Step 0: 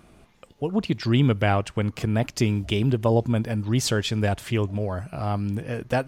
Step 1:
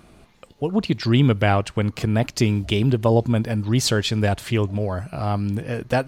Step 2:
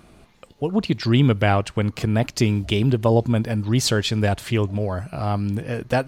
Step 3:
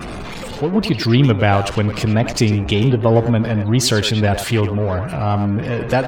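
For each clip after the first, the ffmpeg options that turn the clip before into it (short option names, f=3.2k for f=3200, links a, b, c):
-af "equalizer=f=4.2k:w=5.3:g=4.5,volume=3dB"
-af anull
-filter_complex "[0:a]aeval=exprs='val(0)+0.5*0.0562*sgn(val(0))':c=same,afftdn=nr=33:nf=-39,asplit=2[a][b];[b]adelay=100,highpass=300,lowpass=3.4k,asoftclip=type=hard:threshold=-14.5dB,volume=-7dB[c];[a][c]amix=inputs=2:normalize=0,volume=2.5dB"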